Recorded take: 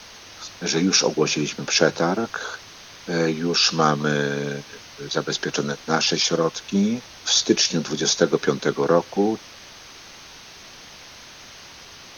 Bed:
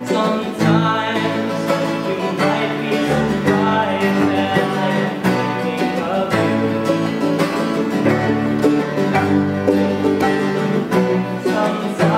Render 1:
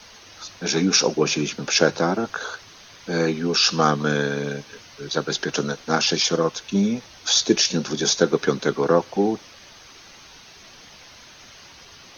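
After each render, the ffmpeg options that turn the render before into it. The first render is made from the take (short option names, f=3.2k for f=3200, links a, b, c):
-af "afftdn=nr=6:nf=-44"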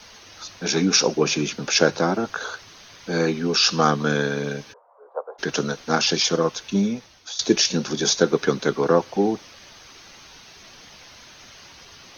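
-filter_complex "[0:a]asplit=3[a][b][c];[a]afade=t=out:st=4.72:d=0.02[d];[b]asuperpass=centerf=750:order=8:qfactor=1.2,afade=t=in:st=4.72:d=0.02,afade=t=out:st=5.38:d=0.02[e];[c]afade=t=in:st=5.38:d=0.02[f];[d][e][f]amix=inputs=3:normalize=0,asplit=2[g][h];[g]atrim=end=7.39,asetpts=PTS-STARTPTS,afade=t=out:st=6.74:d=0.65:silence=0.105925[i];[h]atrim=start=7.39,asetpts=PTS-STARTPTS,afade=t=in:d=0.004:c=hsin:silence=0.105925[j];[i][j]concat=n=2:v=0:a=1"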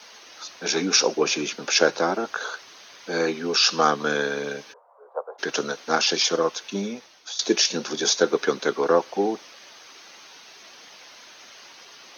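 -af "highpass=170,bass=f=250:g=-11,treble=f=4k:g=-1"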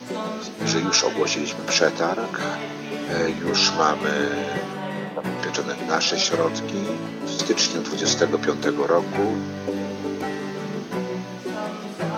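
-filter_complex "[1:a]volume=-12dB[a];[0:a][a]amix=inputs=2:normalize=0"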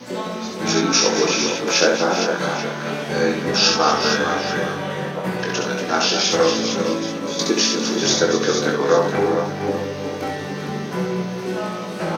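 -filter_complex "[0:a]asplit=2[a][b];[b]adelay=22,volume=-4dB[c];[a][c]amix=inputs=2:normalize=0,asplit=2[d][e];[e]aecho=0:1:67|237|401|460|833:0.596|0.299|0.251|0.447|0.188[f];[d][f]amix=inputs=2:normalize=0"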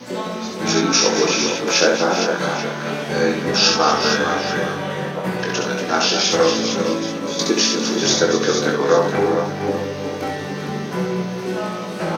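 -af "volume=1dB,alimiter=limit=-2dB:level=0:latency=1"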